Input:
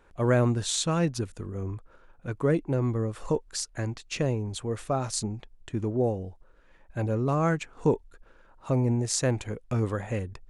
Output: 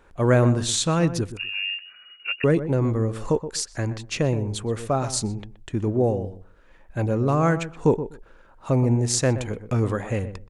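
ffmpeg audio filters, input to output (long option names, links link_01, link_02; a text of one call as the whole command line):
ffmpeg -i in.wav -filter_complex "[0:a]asettb=1/sr,asplit=3[link_01][link_02][link_03];[link_01]atrim=end=1.374[link_04];[link_02]atrim=start=1.37:end=2.44,asetpts=PTS-STARTPTS,afade=type=in:duration=0.004:curve=qsin,afade=type=out:start_time=1.066:duration=0.004:curve=qsin,lowpass=frequency=2500:width_type=q:width=0.5098,lowpass=frequency=2500:width_type=q:width=0.6013,lowpass=frequency=2500:width_type=q:width=0.9,lowpass=frequency=2500:width_type=q:width=2.563,afreqshift=-2900[link_05];[link_03]atrim=start=2.436[link_06];[link_04][link_05]acrossfade=duration=0.004:curve1=hsin:curve2=qsin[link_07];[link_07][link_06]acrossfade=duration=0.004:curve1=qsin:curve2=hsin,asplit=2[link_08][link_09];[link_09]adelay=124,lowpass=frequency=1200:poles=1,volume=-11dB,asplit=2[link_10][link_11];[link_11]adelay=124,lowpass=frequency=1200:poles=1,volume=0.16[link_12];[link_08][link_10][link_12]amix=inputs=3:normalize=0,volume=4.5dB" out.wav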